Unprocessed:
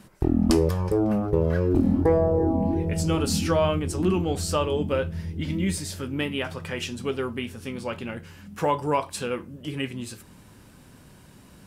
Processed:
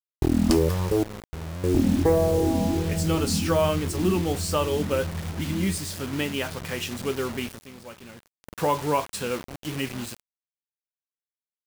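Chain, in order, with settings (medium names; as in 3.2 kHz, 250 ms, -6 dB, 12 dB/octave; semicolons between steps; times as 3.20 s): 1.03–1.64 s: amplifier tone stack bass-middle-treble 10-0-1; bit crusher 6-bit; 7.48–8.49 s: dip -11.5 dB, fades 0.17 s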